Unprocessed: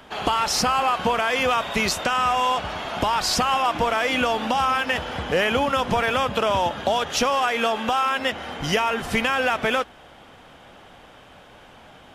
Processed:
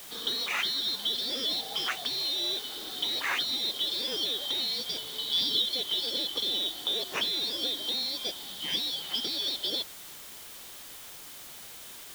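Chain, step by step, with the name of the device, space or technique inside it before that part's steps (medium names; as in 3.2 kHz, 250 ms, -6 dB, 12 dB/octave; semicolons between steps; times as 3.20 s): 5.19–5.62 s: peaking EQ 980 Hz +14 dB 0.63 oct; split-band scrambled radio (four frequency bands reordered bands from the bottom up 3412; band-pass 300–3100 Hz; white noise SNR 13 dB); trim -4.5 dB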